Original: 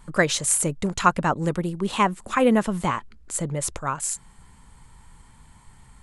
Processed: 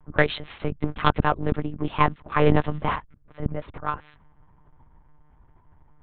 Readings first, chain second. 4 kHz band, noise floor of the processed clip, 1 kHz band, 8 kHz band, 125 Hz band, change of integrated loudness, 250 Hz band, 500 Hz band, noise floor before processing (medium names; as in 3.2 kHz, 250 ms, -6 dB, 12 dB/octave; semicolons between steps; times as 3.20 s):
-3.0 dB, -57 dBFS, -1.0 dB, under -40 dB, +2.0 dB, -2.0 dB, -3.0 dB, -0.5 dB, -52 dBFS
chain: Chebyshev shaper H 5 -21 dB, 7 -17 dB, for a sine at -2.5 dBFS; sine folder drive 10 dB, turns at 0.5 dBFS; level-controlled noise filter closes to 990 Hz, open at -4 dBFS; monotone LPC vocoder at 8 kHz 150 Hz; trim -10 dB